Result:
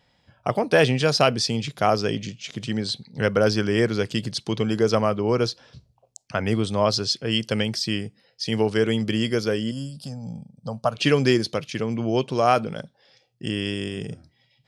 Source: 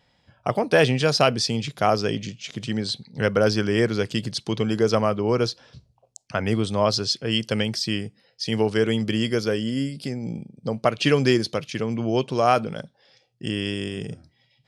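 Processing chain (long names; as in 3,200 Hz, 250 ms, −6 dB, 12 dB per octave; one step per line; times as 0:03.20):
0:09.71–0:10.95: phaser with its sweep stopped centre 870 Hz, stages 4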